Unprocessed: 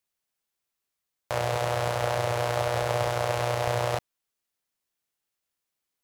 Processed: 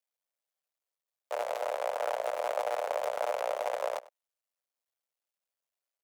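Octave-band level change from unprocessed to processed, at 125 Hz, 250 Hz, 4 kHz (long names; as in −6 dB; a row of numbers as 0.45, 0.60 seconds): below −40 dB, below −15 dB, −11.5 dB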